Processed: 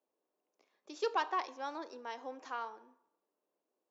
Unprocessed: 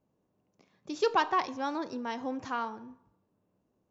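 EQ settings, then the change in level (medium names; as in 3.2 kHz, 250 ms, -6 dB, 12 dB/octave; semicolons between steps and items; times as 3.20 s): high-pass 350 Hz 24 dB/octave; -6.5 dB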